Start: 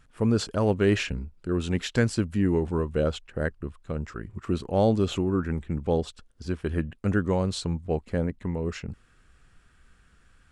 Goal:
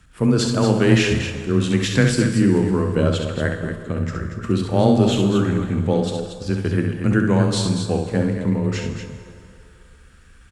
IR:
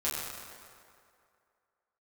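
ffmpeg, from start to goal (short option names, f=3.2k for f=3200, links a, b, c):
-filter_complex "[0:a]equalizer=f=610:w=0.77:g=-5,aecho=1:1:67.06|233.2:0.501|0.398,afreqshift=15,asplit=2[a][b];[1:a]atrim=start_sample=2205,asetrate=38808,aresample=44100,highshelf=f=7.9k:g=9.5[c];[b][c]afir=irnorm=-1:irlink=0,volume=-13.5dB[d];[a][d]amix=inputs=2:normalize=0,volume=6dB"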